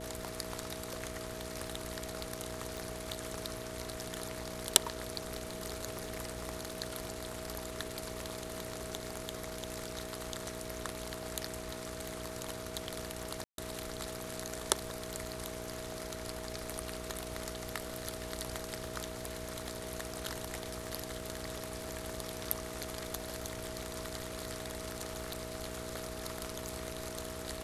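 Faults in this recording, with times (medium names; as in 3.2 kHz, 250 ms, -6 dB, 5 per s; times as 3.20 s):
crackle 64 per s -47 dBFS
hum 60 Hz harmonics 8 -46 dBFS
whine 640 Hz -46 dBFS
2.77 s: pop
13.44–13.58 s: dropout 142 ms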